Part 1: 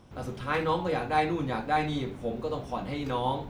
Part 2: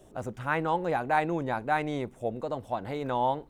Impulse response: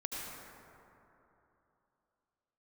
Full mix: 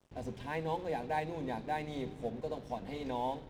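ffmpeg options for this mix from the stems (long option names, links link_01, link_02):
-filter_complex "[0:a]lowpass=6600,acrossover=split=480|3000[link_01][link_02][link_03];[link_02]acompressor=threshold=-42dB:ratio=6[link_04];[link_01][link_04][link_03]amix=inputs=3:normalize=0,volume=-4.5dB,asplit=2[link_05][link_06];[link_06]volume=-13dB[link_07];[1:a]volume=-8dB,asplit=2[link_08][link_09];[link_09]apad=whole_len=154054[link_10];[link_05][link_10]sidechaincompress=threshold=-40dB:ratio=8:attack=16:release=647[link_11];[2:a]atrim=start_sample=2205[link_12];[link_07][link_12]afir=irnorm=-1:irlink=0[link_13];[link_11][link_08][link_13]amix=inputs=3:normalize=0,asuperstop=centerf=1300:order=4:qfactor=2.1,aeval=exprs='sgn(val(0))*max(abs(val(0))-0.00188,0)':channel_layout=same"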